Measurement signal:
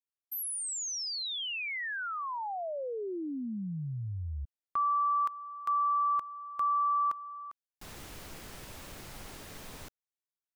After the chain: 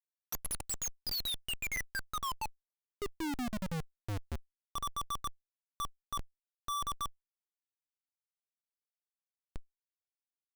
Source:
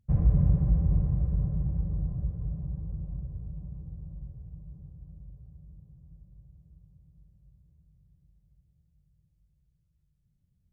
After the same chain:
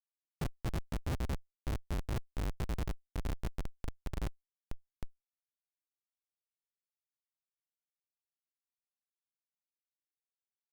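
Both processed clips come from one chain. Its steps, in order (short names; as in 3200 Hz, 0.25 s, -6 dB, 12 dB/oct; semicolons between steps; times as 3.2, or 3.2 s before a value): random spectral dropouts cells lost 63%; Schmitt trigger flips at -36.5 dBFS; power-law curve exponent 0.7; gain +3 dB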